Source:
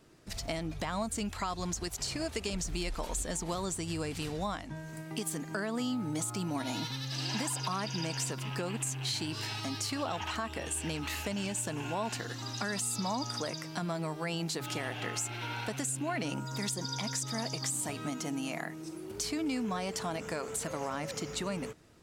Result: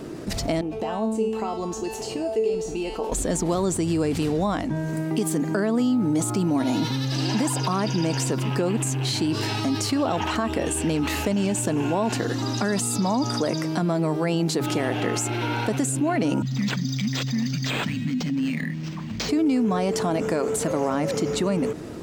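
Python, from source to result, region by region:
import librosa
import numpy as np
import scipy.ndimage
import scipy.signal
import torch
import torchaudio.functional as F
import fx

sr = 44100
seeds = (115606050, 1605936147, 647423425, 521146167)

y = fx.chain(x, sr, fx.comb_fb(f0_hz=220.0, decay_s=0.53, harmonics='all', damping=0.0, mix_pct=90),
    fx.small_body(hz=(440.0, 770.0, 2700.0), ring_ms=20, db=14), at=(0.61, 3.12))
y = fx.chain(y, sr, fx.cheby1_bandstop(low_hz=260.0, high_hz=1800.0, order=5),
    fx.resample_linear(factor=4), at=(16.42, 19.29))
y = fx.peak_eq(y, sr, hz=310.0, db=12.0, octaves=2.7)
y = fx.env_flatten(y, sr, amount_pct=50)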